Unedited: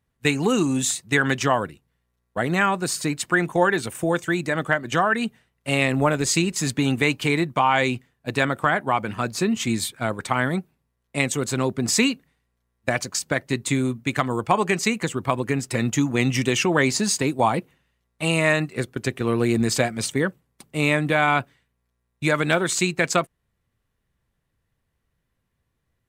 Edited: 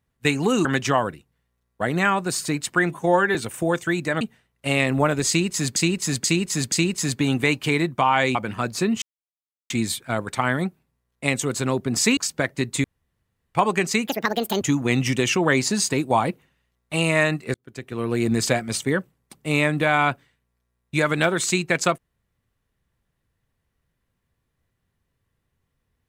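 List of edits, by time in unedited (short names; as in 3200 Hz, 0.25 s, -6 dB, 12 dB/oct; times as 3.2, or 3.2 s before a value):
0.65–1.21 cut
3.46–3.76 stretch 1.5×
4.62–5.23 cut
6.3–6.78 loop, 4 plays
7.93–8.95 cut
9.62 insert silence 0.68 s
12.09–13.09 cut
13.76–14.47 room tone
14.99–15.9 speed 168%
18.83–19.63 fade in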